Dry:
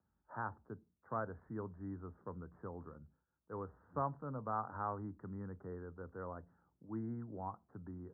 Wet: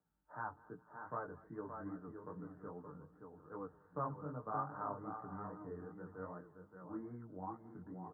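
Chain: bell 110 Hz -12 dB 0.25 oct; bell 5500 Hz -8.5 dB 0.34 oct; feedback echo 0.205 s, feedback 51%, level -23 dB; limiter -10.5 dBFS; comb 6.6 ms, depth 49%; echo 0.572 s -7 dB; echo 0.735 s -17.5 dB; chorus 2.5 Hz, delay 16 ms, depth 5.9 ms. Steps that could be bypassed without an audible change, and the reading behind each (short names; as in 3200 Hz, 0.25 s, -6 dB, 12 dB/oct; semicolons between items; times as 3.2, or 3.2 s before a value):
bell 5500 Hz: input band ends at 1600 Hz; limiter -10.5 dBFS: input peak -24.5 dBFS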